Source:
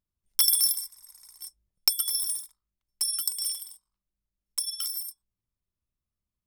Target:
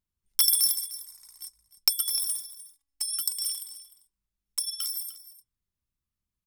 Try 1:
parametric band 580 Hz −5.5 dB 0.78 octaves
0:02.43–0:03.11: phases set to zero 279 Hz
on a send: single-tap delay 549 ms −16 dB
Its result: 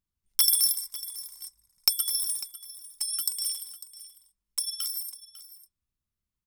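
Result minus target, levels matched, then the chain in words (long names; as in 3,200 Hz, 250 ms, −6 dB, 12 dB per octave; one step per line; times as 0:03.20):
echo 247 ms late
parametric band 580 Hz −5.5 dB 0.78 octaves
0:02.43–0:03.11: phases set to zero 279 Hz
on a send: single-tap delay 302 ms −16 dB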